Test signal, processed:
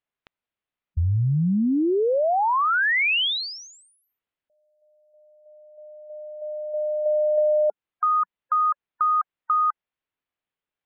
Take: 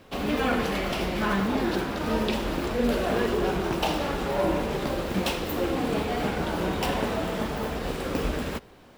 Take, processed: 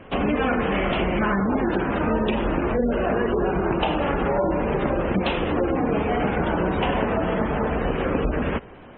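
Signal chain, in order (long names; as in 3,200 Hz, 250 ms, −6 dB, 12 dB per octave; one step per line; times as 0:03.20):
low-pass filter 3,200 Hz 24 dB per octave
gate on every frequency bin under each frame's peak −25 dB strong
downward compressor, threshold −27 dBFS
level +8.5 dB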